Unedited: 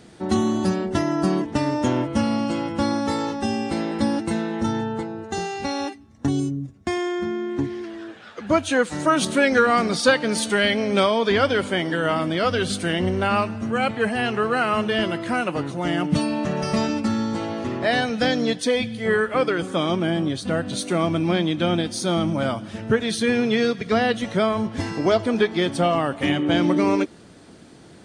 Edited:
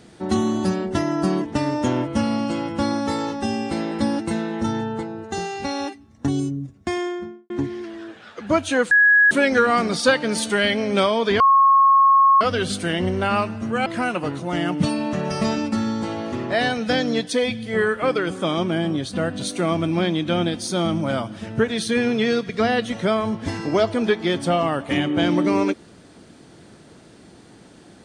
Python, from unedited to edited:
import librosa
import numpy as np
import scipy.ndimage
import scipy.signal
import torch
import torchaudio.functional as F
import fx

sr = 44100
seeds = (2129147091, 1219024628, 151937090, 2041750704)

y = fx.studio_fade_out(x, sr, start_s=6.98, length_s=0.52)
y = fx.edit(y, sr, fx.bleep(start_s=8.91, length_s=0.4, hz=1670.0, db=-10.5),
    fx.bleep(start_s=11.4, length_s=1.01, hz=1090.0, db=-10.5),
    fx.cut(start_s=13.86, length_s=1.32), tone=tone)